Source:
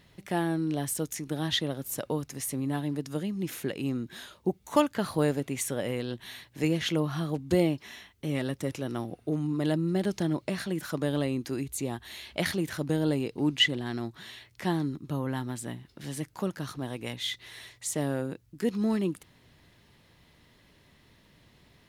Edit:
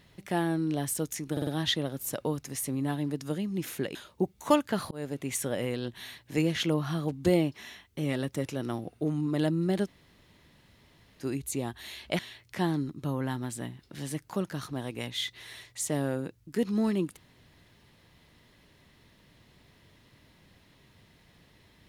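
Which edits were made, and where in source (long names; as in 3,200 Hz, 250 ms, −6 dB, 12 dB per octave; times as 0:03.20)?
0:01.32: stutter 0.05 s, 4 plays
0:03.80–0:04.21: remove
0:05.17–0:05.70: fade in equal-power
0:10.12–0:11.48: fill with room tone, crossfade 0.06 s
0:12.45–0:14.25: remove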